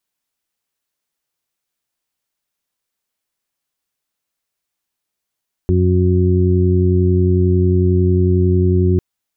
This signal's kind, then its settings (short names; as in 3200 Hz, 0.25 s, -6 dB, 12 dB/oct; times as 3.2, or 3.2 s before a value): steady additive tone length 3.30 s, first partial 91.1 Hz, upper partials -5.5/-11.5/-4.5 dB, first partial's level -12.5 dB